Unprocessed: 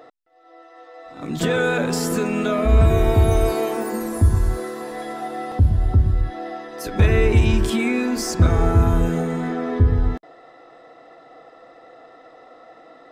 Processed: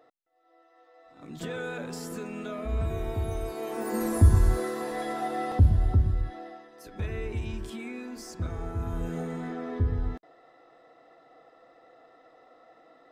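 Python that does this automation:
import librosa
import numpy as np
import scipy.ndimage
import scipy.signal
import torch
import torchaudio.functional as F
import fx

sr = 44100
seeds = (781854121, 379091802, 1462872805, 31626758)

y = fx.gain(x, sr, db=fx.line((3.53, -15.0), (4.03, -2.0), (5.49, -2.0), (6.34, -9.5), (6.75, -17.5), (8.74, -17.5), (9.22, -10.5)))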